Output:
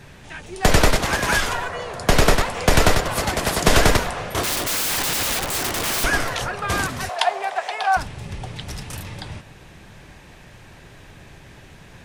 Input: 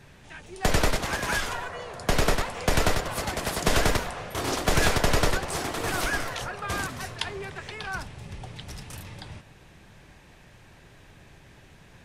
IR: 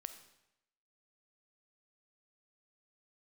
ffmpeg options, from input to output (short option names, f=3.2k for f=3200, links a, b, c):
-filter_complex "[0:a]asettb=1/sr,asplit=3[a][b][c];[a]atrim=end=4.434[d];[b]atrim=start=4.43:end=6.04,asetpts=PTS-STARTPTS,afade=t=in:d=0.004:c=qsin,afade=t=out:st=1.606:d=0.004:c=qsin,aeval=exprs='(mod(18.8*val(0)+1,2)-1)/18.8':c=same[e];[c]atrim=start=6.036[f];[d][e]acrossfade=d=0.004:c1=hsin:c2=qsin[g];[g][f]acrossfade=d=0.004:c1=qsin:c2=hsin,asettb=1/sr,asplit=3[h][i][j];[h]atrim=end=7.094[k];[i]atrim=start=7.09:end=7.97,asetpts=PTS-STARTPTS,afade=t=in:d=0.004:c=qsin,afade=t=out:st=0.876:d=0.004:c=qsin,highpass=f=710:t=q:w=7.3[l];[j]atrim=start=7.966[m];[k][l]acrossfade=d=0.004:c1=hsin:c2=qsin[n];[n][m]acrossfade=d=0.004:c1=qsin:c2=hsin,volume=7.5dB"